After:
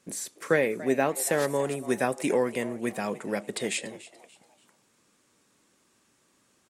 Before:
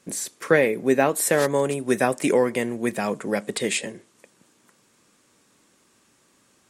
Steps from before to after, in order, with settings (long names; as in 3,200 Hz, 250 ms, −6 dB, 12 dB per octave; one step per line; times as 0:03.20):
echo with shifted repeats 289 ms, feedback 36%, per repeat +130 Hz, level −17.5 dB
level −5.5 dB